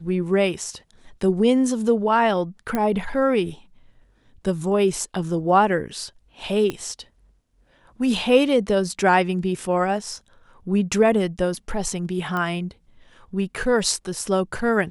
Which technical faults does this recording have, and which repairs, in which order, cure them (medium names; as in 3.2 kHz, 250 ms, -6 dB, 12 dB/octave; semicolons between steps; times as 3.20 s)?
2.75 s: pop -11 dBFS
6.70 s: pop -13 dBFS
12.37 s: pop -15 dBFS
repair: de-click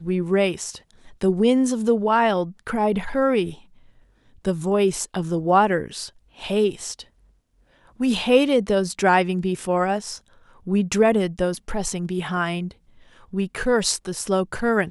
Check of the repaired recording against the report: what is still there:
6.70 s: pop